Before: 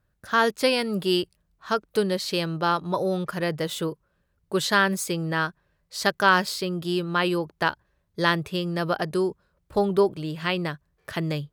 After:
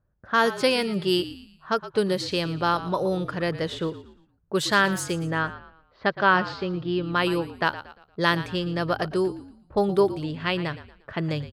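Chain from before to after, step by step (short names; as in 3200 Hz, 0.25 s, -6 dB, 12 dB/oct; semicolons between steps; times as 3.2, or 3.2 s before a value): 5.13–7.04 Gaussian blur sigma 2.2 samples; low-pass opened by the level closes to 1100 Hz, open at -20 dBFS; frequency-shifting echo 0.116 s, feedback 38%, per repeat -51 Hz, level -14.5 dB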